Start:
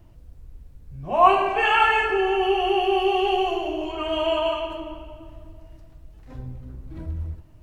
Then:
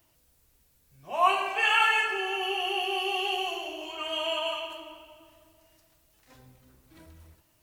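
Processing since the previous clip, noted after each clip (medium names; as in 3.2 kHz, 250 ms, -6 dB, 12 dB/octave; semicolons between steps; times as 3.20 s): tilt EQ +4.5 dB/octave; trim -7 dB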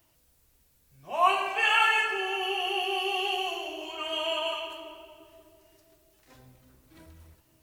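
bucket-brigade echo 536 ms, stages 2048, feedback 55%, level -16 dB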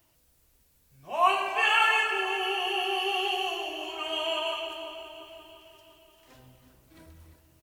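feedback delay 345 ms, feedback 55%, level -12 dB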